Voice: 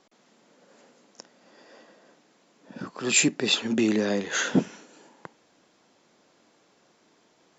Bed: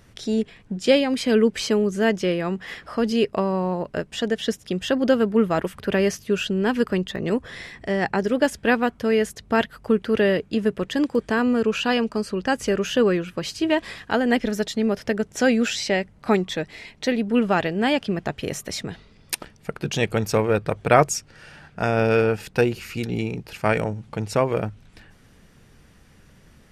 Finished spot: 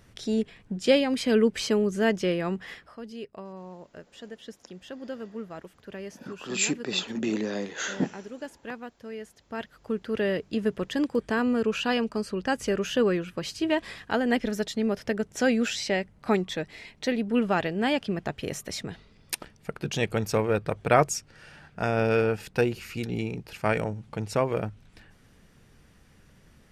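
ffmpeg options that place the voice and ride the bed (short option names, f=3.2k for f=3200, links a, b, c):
-filter_complex "[0:a]adelay=3450,volume=-5.5dB[a];[1:a]volume=10.5dB,afade=t=out:st=2.58:d=0.38:silence=0.177828,afade=t=in:st=9.4:d=1.3:silence=0.199526[b];[a][b]amix=inputs=2:normalize=0"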